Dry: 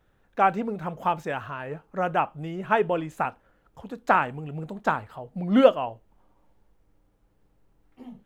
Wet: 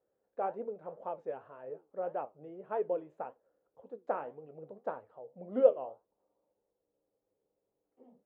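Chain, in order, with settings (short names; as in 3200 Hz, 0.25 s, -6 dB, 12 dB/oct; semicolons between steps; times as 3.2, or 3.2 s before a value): band-pass 500 Hz, Q 3.3; flange 1.8 Hz, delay 7 ms, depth 8.5 ms, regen +69%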